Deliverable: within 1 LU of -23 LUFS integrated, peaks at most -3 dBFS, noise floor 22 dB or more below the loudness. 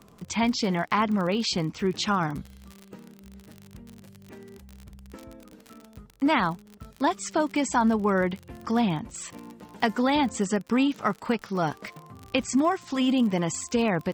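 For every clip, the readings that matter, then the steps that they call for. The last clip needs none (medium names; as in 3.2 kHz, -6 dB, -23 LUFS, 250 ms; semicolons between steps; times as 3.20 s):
tick rate 45 per s; loudness -26.0 LUFS; peak level -9.5 dBFS; loudness target -23.0 LUFS
-> de-click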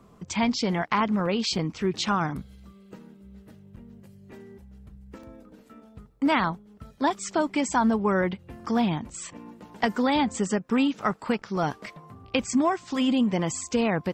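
tick rate 0.28 per s; loudness -26.0 LUFS; peak level -9.5 dBFS; loudness target -23.0 LUFS
-> trim +3 dB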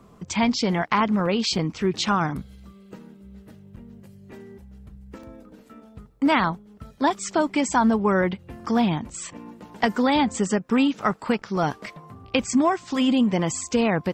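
loudness -23.0 LUFS; peak level -6.5 dBFS; noise floor -51 dBFS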